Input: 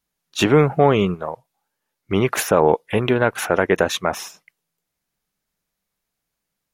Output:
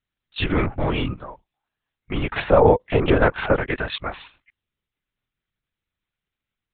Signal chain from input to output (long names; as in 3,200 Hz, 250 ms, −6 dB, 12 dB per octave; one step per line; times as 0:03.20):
parametric band 550 Hz −10 dB 2.3 octaves, from 0:02.36 +3 dB, from 0:03.56 −10 dB
linear-prediction vocoder at 8 kHz whisper
level −1 dB